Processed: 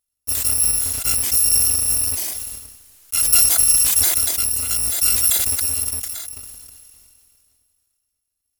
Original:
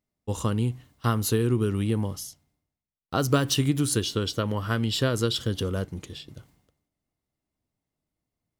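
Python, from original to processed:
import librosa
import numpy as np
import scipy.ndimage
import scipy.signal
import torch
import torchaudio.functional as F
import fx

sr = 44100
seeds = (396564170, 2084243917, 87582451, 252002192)

y = fx.bit_reversed(x, sr, seeds[0], block=256)
y = fx.peak_eq(y, sr, hz=12000.0, db=11.5, octaves=1.8)
y = fx.sustainer(y, sr, db_per_s=24.0)
y = F.gain(torch.from_numpy(y), -2.5).numpy()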